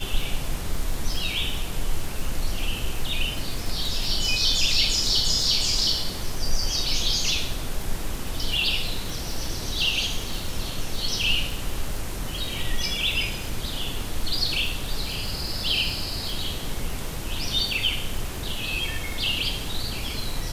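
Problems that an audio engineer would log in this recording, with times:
surface crackle 41 per second −28 dBFS

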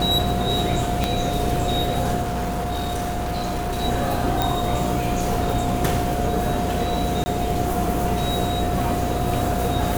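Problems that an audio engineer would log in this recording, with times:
mains buzz 60 Hz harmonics 13 −27 dBFS
whistle 710 Hz −26 dBFS
0:01.04: click −6 dBFS
0:02.21–0:03.84: clipping −21.5 dBFS
0:04.42: click
0:07.24–0:07.26: drop-out 20 ms

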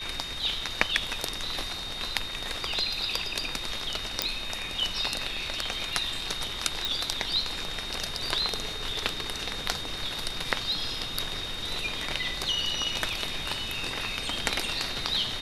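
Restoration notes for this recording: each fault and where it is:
whistle 3,700 Hz −36 dBFS
0:04.22: click −6 dBFS
0:06.85: click

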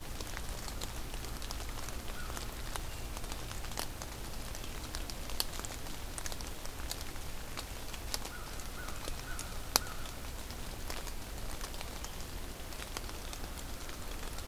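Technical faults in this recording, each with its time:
surface crackle 350 per second −47 dBFS

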